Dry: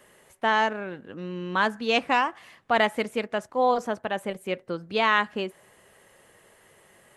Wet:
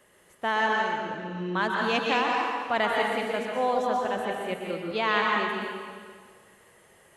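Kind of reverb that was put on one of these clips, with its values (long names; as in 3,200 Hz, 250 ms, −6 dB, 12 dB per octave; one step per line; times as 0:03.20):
dense smooth reverb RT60 1.8 s, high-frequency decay 0.9×, pre-delay 110 ms, DRR −1.5 dB
level −4.5 dB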